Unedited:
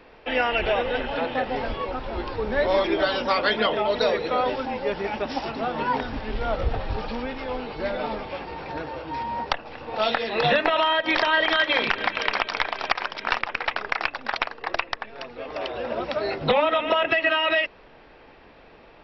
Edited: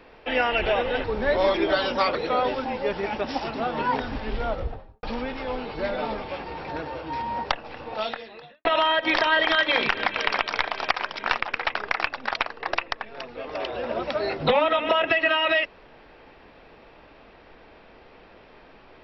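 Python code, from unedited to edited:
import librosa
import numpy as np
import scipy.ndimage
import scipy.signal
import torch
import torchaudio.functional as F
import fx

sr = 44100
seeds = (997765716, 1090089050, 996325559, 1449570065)

y = fx.studio_fade_out(x, sr, start_s=6.33, length_s=0.71)
y = fx.edit(y, sr, fx.cut(start_s=1.04, length_s=1.3),
    fx.cut(start_s=3.45, length_s=0.71),
    fx.fade_out_span(start_s=9.81, length_s=0.85, curve='qua'), tone=tone)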